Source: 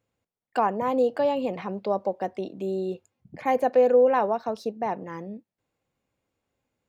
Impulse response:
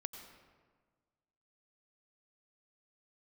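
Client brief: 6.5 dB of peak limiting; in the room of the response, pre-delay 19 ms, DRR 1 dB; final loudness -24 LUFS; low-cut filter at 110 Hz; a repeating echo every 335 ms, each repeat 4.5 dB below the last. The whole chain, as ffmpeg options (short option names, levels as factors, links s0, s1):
-filter_complex "[0:a]highpass=110,alimiter=limit=0.141:level=0:latency=1,aecho=1:1:335|670|1005|1340|1675|2010|2345|2680|3015:0.596|0.357|0.214|0.129|0.0772|0.0463|0.0278|0.0167|0.01,asplit=2[s0][s1];[1:a]atrim=start_sample=2205,adelay=19[s2];[s1][s2]afir=irnorm=-1:irlink=0,volume=1.19[s3];[s0][s3]amix=inputs=2:normalize=0,volume=1.06"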